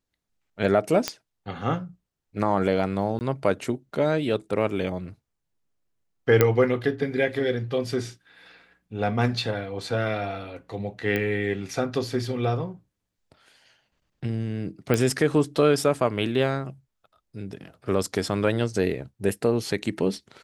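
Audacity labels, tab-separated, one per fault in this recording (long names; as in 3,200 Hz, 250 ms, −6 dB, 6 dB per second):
1.080000	1.080000	click −8 dBFS
3.190000	3.210000	drop-out 19 ms
6.410000	6.410000	click −4 dBFS
11.160000	11.160000	click −13 dBFS
14.940000	14.940000	click −10 dBFS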